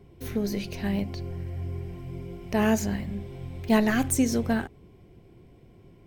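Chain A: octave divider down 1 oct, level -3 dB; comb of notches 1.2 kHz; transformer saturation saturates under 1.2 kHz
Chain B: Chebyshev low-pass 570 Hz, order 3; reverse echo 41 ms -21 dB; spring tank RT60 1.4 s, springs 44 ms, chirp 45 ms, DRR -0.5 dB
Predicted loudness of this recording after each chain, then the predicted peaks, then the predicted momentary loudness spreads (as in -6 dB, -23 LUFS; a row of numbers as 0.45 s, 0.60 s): -32.5 LUFS, -28.0 LUFS; -11.0 dBFS, -11.0 dBFS; 13 LU, 14 LU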